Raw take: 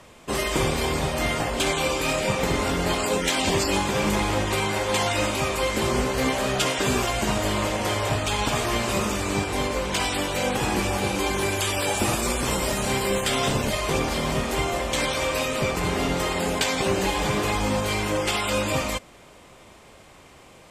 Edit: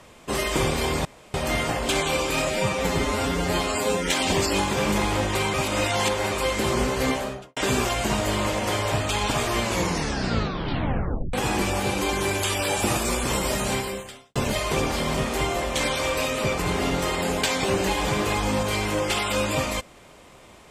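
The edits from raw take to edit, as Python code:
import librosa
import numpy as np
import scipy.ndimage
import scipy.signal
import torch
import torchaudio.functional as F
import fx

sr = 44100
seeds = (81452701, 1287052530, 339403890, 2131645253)

y = fx.studio_fade_out(x, sr, start_s=6.22, length_s=0.52)
y = fx.edit(y, sr, fx.insert_room_tone(at_s=1.05, length_s=0.29),
    fx.stretch_span(start_s=2.18, length_s=1.07, factor=1.5),
    fx.reverse_span(start_s=4.71, length_s=0.78),
    fx.tape_stop(start_s=8.8, length_s=1.71),
    fx.fade_out_span(start_s=12.88, length_s=0.65, curve='qua'), tone=tone)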